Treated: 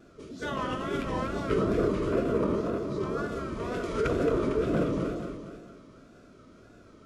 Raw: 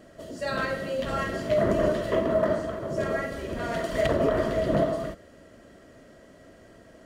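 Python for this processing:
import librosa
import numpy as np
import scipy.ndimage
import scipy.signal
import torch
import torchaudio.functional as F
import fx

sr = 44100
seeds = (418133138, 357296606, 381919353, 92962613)

y = fx.echo_feedback(x, sr, ms=229, feedback_pct=45, wet_db=-4.5)
y = fx.formant_shift(y, sr, semitones=-5)
y = fx.wow_flutter(y, sr, seeds[0], rate_hz=2.1, depth_cents=99.0)
y = F.gain(torch.from_numpy(y), -3.5).numpy()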